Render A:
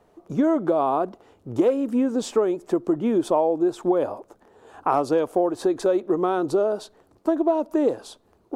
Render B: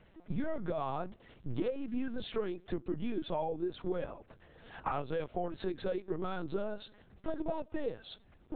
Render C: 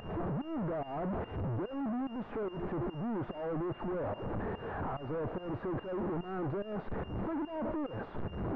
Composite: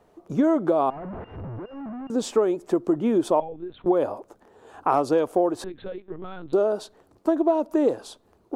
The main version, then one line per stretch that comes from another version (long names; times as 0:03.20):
A
0:00.90–0:02.10: punch in from C
0:03.40–0:03.86: punch in from B
0:05.64–0:06.53: punch in from B